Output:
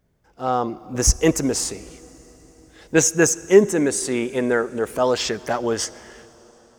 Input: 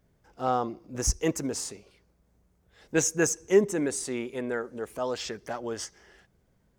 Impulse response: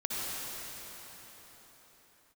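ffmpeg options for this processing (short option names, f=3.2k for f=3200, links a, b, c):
-filter_complex "[0:a]dynaudnorm=f=110:g=11:m=11dB,asplit=2[a][b];[1:a]atrim=start_sample=2205[c];[b][c]afir=irnorm=-1:irlink=0,volume=-26dB[d];[a][d]amix=inputs=2:normalize=0"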